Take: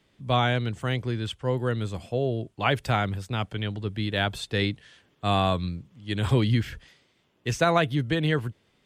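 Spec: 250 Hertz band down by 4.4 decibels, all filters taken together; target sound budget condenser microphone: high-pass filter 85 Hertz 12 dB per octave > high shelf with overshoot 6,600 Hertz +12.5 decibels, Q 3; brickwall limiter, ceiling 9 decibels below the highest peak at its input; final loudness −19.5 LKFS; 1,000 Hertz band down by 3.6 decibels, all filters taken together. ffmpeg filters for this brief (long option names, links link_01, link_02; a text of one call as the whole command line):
ffmpeg -i in.wav -af "equalizer=frequency=250:width_type=o:gain=-6,equalizer=frequency=1000:width_type=o:gain=-4.5,alimiter=limit=-20dB:level=0:latency=1,highpass=85,highshelf=frequency=6600:width_type=q:width=3:gain=12.5,volume=12.5dB" out.wav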